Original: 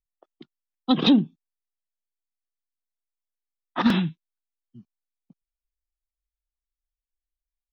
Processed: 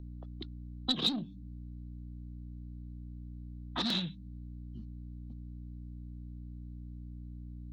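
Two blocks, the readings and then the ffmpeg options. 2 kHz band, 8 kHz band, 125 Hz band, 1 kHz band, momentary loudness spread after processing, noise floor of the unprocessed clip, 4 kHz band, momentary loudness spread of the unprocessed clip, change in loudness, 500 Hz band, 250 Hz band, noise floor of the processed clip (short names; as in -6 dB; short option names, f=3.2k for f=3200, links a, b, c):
-12.0 dB, n/a, -6.0 dB, -13.5 dB, 15 LU, under -85 dBFS, -2.0 dB, 17 LU, -17.0 dB, -14.0 dB, -15.5 dB, -46 dBFS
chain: -filter_complex "[0:a]aeval=exprs='val(0)+0.00708*(sin(2*PI*60*n/s)+sin(2*PI*2*60*n/s)/2+sin(2*PI*3*60*n/s)/3+sin(2*PI*4*60*n/s)/4+sin(2*PI*5*60*n/s)/5)':c=same,asoftclip=type=tanh:threshold=-19.5dB,equalizer=f=4k:t=o:w=0.44:g=14.5,bandreject=f=96.09:t=h:w=4,bandreject=f=192.18:t=h:w=4,bandreject=f=288.27:t=h:w=4,acrossover=split=390|3600[a][b][c];[a]acompressor=threshold=-37dB:ratio=4[d];[b]acompressor=threshold=-40dB:ratio=4[e];[c]acompressor=threshold=-32dB:ratio=4[f];[d][e][f]amix=inputs=3:normalize=0"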